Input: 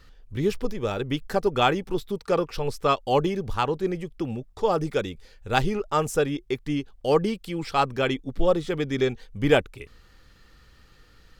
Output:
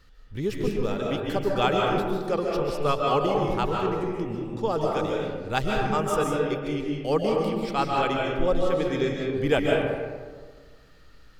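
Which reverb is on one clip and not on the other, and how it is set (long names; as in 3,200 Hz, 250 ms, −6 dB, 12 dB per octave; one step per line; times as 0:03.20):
comb and all-pass reverb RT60 1.6 s, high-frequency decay 0.4×, pre-delay 105 ms, DRR −1.5 dB
level −4 dB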